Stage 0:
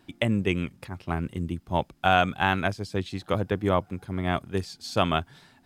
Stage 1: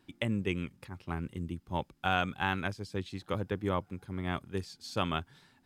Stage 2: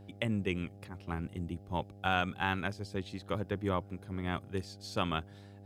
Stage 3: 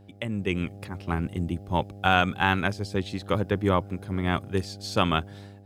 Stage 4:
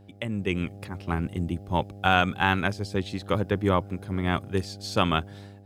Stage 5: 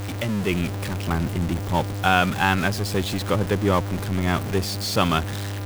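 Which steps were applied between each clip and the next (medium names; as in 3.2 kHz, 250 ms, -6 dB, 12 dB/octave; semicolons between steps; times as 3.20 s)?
peaking EQ 670 Hz -8.5 dB 0.22 oct; trim -7 dB
mains buzz 100 Hz, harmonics 8, -51 dBFS -6 dB/octave; trim -1 dB
level rider gain up to 9.5 dB
no audible change
jump at every zero crossing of -25.5 dBFS; trim +1 dB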